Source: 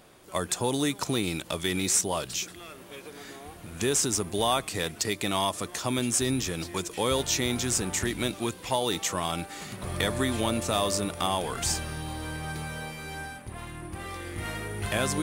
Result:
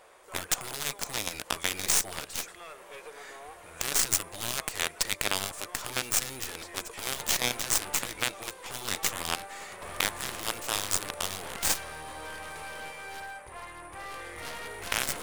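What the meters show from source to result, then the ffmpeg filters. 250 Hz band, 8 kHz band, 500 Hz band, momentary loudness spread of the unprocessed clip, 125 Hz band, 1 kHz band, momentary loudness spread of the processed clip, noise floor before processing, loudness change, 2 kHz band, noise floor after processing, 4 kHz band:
-14.5 dB, -0.5 dB, -10.0 dB, 14 LU, -12.5 dB, -5.0 dB, 15 LU, -47 dBFS, -2.0 dB, +0.5 dB, -50 dBFS, -1.5 dB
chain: -af "equalizer=f=125:t=o:w=1:g=-10,equalizer=f=250:t=o:w=1:g=-10,equalizer=f=500:t=o:w=1:g=10,equalizer=f=1000:t=o:w=1:g=9,equalizer=f=2000:t=o:w=1:g=8,equalizer=f=8000:t=o:w=1:g=7,afftfilt=real='re*lt(hypot(re,im),0.316)':imag='im*lt(hypot(re,im),0.316)':win_size=1024:overlap=0.75,aeval=exprs='0.473*(cos(1*acos(clip(val(0)/0.473,-1,1)))-cos(1*PI/2))+0.0188*(cos(4*acos(clip(val(0)/0.473,-1,1)))-cos(4*PI/2))+0.0119*(cos(6*acos(clip(val(0)/0.473,-1,1)))-cos(6*PI/2))+0.0944*(cos(7*acos(clip(val(0)/0.473,-1,1)))-cos(7*PI/2))+0.0211*(cos(8*acos(clip(val(0)/0.473,-1,1)))-cos(8*PI/2))':c=same"

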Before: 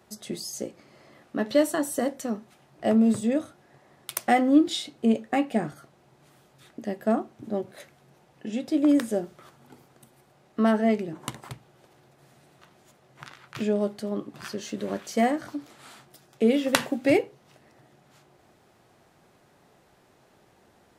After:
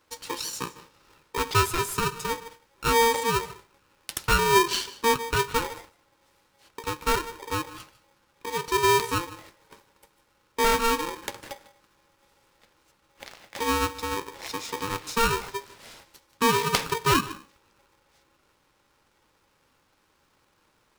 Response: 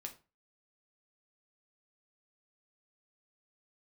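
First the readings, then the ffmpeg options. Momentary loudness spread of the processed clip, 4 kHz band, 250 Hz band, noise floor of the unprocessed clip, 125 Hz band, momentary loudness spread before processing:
18 LU, +7.5 dB, -10.5 dB, -61 dBFS, +5.0 dB, 17 LU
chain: -filter_complex "[0:a]agate=range=0.447:threshold=0.00251:ratio=16:detection=peak,equalizer=f=4500:t=o:w=0.54:g=6,asoftclip=type=tanh:threshold=0.282,asplit=2[s0][s1];[1:a]atrim=start_sample=2205,adelay=149[s2];[s1][s2]afir=irnorm=-1:irlink=0,volume=0.224[s3];[s0][s3]amix=inputs=2:normalize=0,aeval=exprs='val(0)*sgn(sin(2*PI*690*n/s))':c=same"

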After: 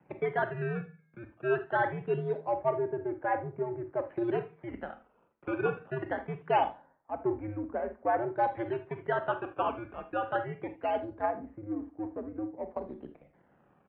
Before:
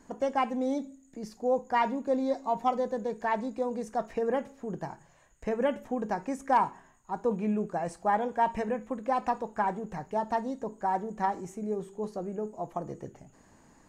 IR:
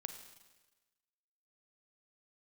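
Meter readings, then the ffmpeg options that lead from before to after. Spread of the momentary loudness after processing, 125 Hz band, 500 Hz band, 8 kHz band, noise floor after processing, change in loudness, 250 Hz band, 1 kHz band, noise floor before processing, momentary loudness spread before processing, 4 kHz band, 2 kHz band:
12 LU, +3.0 dB, -1.0 dB, under -25 dB, -67 dBFS, -2.0 dB, -4.5 dB, -3.5 dB, -60 dBFS, 10 LU, -3.0 dB, +2.0 dB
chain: -filter_complex "[0:a]equalizer=f=200:t=o:w=0.56:g=-11,acrossover=split=190[s0][s1];[s1]adynamicsmooth=sensitivity=8:basefreq=1500[s2];[s0][s2]amix=inputs=2:normalize=0,acrusher=samples=12:mix=1:aa=0.000001:lfo=1:lforange=19.2:lforate=0.23,asplit=2[s3][s4];[s4]adelay=139.9,volume=0.0355,highshelf=f=4000:g=-3.15[s5];[s3][s5]amix=inputs=2:normalize=0[s6];[1:a]atrim=start_sample=2205,atrim=end_sample=3969[s7];[s6][s7]afir=irnorm=-1:irlink=0,highpass=f=210:t=q:w=0.5412,highpass=f=210:t=q:w=1.307,lowpass=f=2400:t=q:w=0.5176,lowpass=f=2400:t=q:w=0.7071,lowpass=f=2400:t=q:w=1.932,afreqshift=-110,volume=1.33"

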